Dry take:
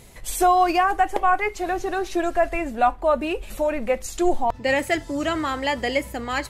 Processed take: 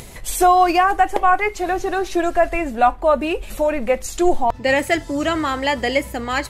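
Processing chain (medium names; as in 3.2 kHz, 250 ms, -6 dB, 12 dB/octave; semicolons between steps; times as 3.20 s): upward compressor, threshold -35 dBFS; trim +4 dB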